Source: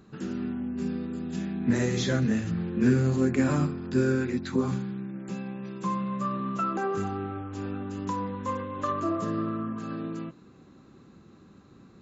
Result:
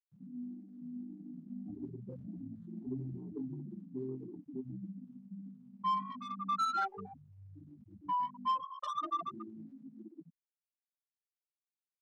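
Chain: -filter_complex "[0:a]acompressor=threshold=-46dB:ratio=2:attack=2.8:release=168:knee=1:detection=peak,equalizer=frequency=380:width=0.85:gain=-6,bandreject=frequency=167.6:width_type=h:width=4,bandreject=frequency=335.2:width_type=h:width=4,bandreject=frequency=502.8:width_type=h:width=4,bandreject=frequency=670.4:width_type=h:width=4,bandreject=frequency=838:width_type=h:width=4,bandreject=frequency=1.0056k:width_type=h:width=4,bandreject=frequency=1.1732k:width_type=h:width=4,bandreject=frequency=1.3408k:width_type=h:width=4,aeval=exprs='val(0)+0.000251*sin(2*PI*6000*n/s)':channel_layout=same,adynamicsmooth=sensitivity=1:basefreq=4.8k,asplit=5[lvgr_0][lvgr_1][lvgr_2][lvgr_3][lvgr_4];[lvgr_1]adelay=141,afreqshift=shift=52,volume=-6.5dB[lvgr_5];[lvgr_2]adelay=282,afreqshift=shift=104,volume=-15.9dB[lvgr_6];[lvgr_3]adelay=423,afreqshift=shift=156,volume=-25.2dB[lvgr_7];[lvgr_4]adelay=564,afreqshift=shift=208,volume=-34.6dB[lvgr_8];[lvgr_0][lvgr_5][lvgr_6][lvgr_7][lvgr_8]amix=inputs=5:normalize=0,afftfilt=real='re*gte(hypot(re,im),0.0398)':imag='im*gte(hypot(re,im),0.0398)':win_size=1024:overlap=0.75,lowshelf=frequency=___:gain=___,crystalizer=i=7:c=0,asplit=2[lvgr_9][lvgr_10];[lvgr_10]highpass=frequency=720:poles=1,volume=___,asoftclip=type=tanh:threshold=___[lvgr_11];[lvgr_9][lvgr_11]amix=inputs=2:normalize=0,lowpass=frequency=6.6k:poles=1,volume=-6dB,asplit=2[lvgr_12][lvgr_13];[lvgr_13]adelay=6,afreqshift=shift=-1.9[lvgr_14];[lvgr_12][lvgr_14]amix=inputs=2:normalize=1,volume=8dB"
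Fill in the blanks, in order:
490, -7.5, 15dB, -32dB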